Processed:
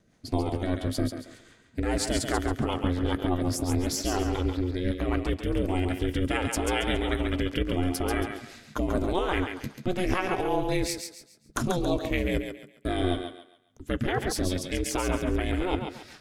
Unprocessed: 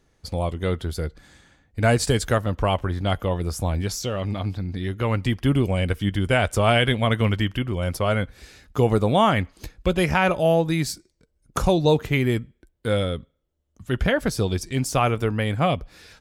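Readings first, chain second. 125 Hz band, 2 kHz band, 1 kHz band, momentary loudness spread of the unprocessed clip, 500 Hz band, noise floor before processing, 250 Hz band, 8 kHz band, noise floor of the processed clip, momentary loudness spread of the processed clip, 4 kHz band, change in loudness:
−8.5 dB, −6.5 dB, −6.5 dB, 10 LU, −6.5 dB, −70 dBFS, −3.0 dB, −1.5 dB, −59 dBFS, 7 LU, −5.5 dB, −5.5 dB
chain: in parallel at +2 dB: compressor whose output falls as the input rises −24 dBFS, ratio −0.5
on the sum: ring modulation 180 Hz
rotating-speaker cabinet horn 5 Hz
feedback echo with a high-pass in the loop 138 ms, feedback 34%, high-pass 370 Hz, level −5.5 dB
level −5.5 dB

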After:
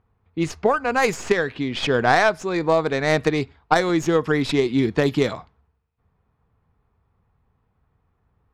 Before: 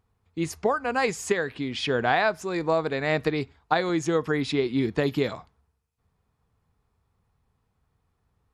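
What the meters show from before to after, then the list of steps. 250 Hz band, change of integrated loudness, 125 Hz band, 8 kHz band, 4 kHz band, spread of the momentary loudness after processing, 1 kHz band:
+5.0 dB, +5.0 dB, +5.0 dB, +3.0 dB, +4.5 dB, 7 LU, +5.0 dB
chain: stylus tracing distortion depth 0.073 ms
low-pass that shuts in the quiet parts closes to 2,300 Hz, open at −19.5 dBFS
level +5 dB

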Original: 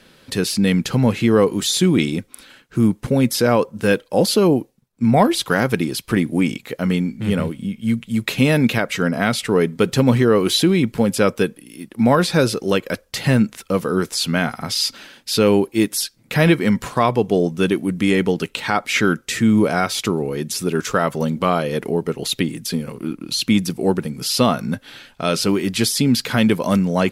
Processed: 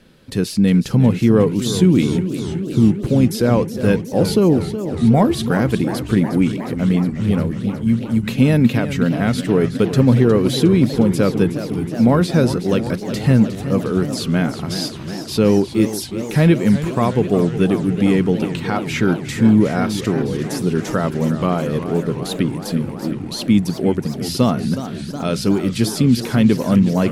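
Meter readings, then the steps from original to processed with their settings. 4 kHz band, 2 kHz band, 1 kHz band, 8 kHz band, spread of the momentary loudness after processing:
−5.0 dB, −4.5 dB, −3.0 dB, −5.0 dB, 9 LU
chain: low-shelf EQ 430 Hz +11 dB
feedback echo with a swinging delay time 364 ms, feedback 78%, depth 150 cents, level −11.5 dB
level −6 dB

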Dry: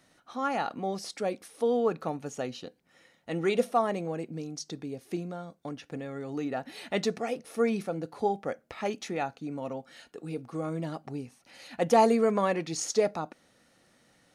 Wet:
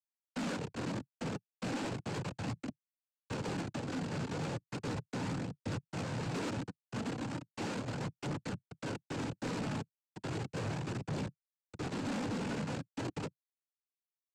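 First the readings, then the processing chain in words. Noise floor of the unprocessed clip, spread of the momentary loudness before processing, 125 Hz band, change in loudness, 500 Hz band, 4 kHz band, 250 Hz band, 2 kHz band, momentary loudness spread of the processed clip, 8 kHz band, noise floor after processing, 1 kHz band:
−65 dBFS, 15 LU, +2.0 dB, −8.5 dB, −14.0 dB, −4.0 dB, −5.0 dB, −4.0 dB, 6 LU, −8.5 dB, below −85 dBFS, −12.0 dB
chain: sub-octave generator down 2 octaves, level −4 dB
inverse Chebyshev low-pass filter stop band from 1,300 Hz, stop band 70 dB
comb filter 6.8 ms, depth 35%
hum removal 164.8 Hz, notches 2
comparator with hysteresis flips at −42 dBFS
cochlear-implant simulation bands 8
phase shifter 0.36 Hz, delay 4.8 ms, feedback 26%
soft clipping −38 dBFS, distortion −12 dB
level +6 dB

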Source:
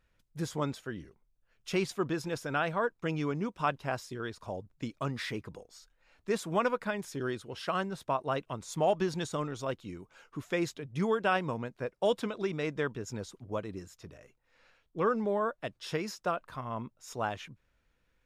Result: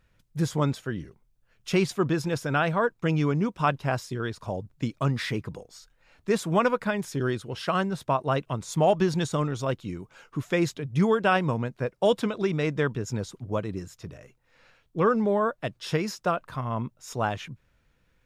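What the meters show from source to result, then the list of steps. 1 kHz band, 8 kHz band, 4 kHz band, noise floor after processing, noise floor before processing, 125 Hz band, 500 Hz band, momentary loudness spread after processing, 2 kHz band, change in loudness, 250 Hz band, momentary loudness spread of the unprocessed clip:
+5.5 dB, +5.5 dB, +5.5 dB, −68 dBFS, −74 dBFS, +10.5 dB, +6.0 dB, 13 LU, +5.5 dB, +6.5 dB, +8.0 dB, 14 LU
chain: parametric band 130 Hz +6 dB 1.3 octaves
level +5.5 dB

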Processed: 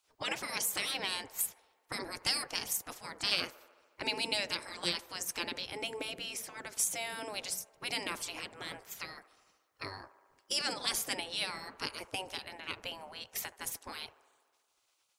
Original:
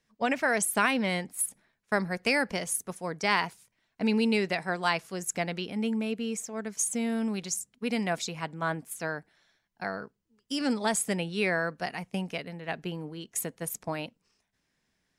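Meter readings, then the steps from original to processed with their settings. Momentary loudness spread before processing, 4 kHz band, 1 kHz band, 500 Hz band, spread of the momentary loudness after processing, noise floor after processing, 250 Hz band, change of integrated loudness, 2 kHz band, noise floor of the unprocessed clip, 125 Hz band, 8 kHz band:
11 LU, +3.0 dB, −10.0 dB, −12.5 dB, 12 LU, −76 dBFS, −18.0 dB, −6.0 dB, −8.0 dB, −78 dBFS, −16.0 dB, −4.0 dB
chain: gate on every frequency bin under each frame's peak −15 dB weak
dynamic equaliser 1,400 Hz, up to −7 dB, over −52 dBFS, Q 0.71
delay with a band-pass on its return 73 ms, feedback 74%, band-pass 760 Hz, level −16.5 dB
level +7 dB

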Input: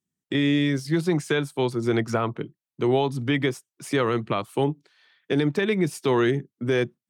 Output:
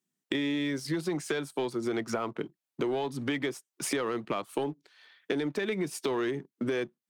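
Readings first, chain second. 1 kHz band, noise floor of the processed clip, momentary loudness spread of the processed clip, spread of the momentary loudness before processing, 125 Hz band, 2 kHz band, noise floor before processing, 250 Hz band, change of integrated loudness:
−7.5 dB, below −85 dBFS, 5 LU, 6 LU, −14.0 dB, −7.0 dB, below −85 dBFS, −8.0 dB, −8.0 dB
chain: high-pass filter 220 Hz 12 dB per octave
leveller curve on the samples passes 1
downward compressor 5 to 1, threshold −34 dBFS, peak gain reduction 16 dB
level +4 dB

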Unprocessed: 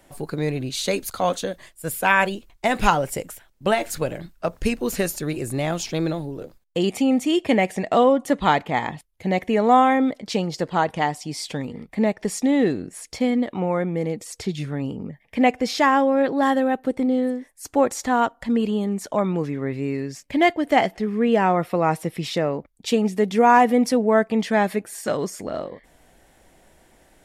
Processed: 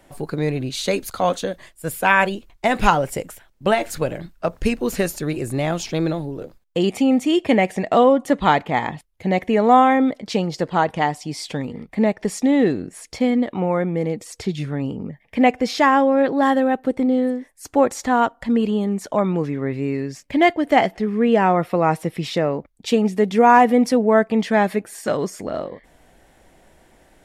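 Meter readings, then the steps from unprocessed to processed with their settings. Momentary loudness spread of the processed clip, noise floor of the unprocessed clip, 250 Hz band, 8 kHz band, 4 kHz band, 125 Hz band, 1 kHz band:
12 LU, −58 dBFS, +2.5 dB, −1.0 dB, +0.5 dB, +2.5 dB, +2.5 dB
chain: high-shelf EQ 4,700 Hz −5 dB
level +2.5 dB

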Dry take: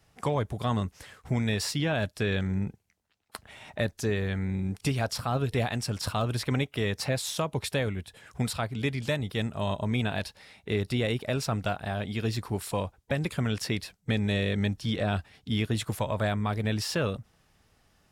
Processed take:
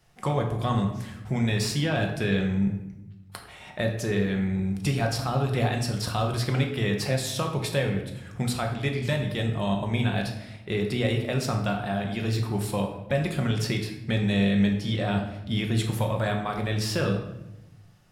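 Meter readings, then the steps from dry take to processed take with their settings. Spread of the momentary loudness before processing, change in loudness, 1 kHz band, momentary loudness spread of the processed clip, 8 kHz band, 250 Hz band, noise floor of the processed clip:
5 LU, +3.0 dB, +3.0 dB, 7 LU, +1.5 dB, +4.5 dB, −48 dBFS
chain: rectangular room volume 330 cubic metres, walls mixed, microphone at 0.93 metres

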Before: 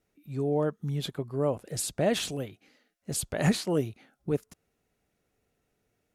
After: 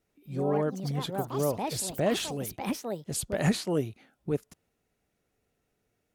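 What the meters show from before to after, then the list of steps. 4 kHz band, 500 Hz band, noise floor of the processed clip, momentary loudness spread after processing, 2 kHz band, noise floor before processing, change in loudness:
−0.5 dB, 0.0 dB, −78 dBFS, 7 LU, −0.5 dB, −78 dBFS, −0.5 dB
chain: delay with pitch and tempo change per echo 93 ms, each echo +5 semitones, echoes 2, each echo −6 dB
level −1 dB

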